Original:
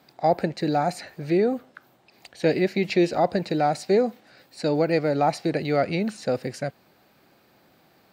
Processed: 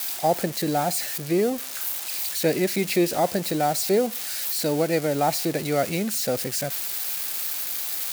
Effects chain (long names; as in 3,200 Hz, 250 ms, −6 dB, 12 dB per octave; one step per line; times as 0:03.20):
spike at every zero crossing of −19.5 dBFS
level −1 dB